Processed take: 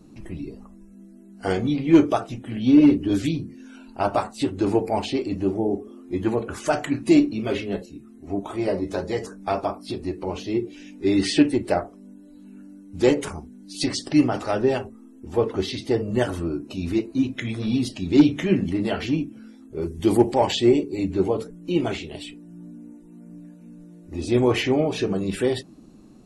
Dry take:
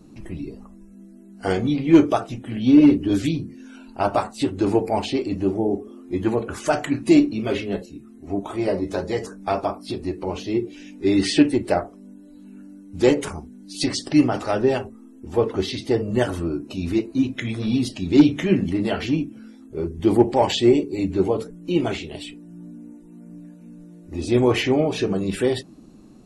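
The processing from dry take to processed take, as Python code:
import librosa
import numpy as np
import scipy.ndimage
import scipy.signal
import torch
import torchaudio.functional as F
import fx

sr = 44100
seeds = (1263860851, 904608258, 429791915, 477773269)

y = fx.high_shelf(x, sr, hz=fx.line((19.81, 3100.0), (20.33, 5300.0)), db=11.5, at=(19.81, 20.33), fade=0.02)
y = F.gain(torch.from_numpy(y), -1.5).numpy()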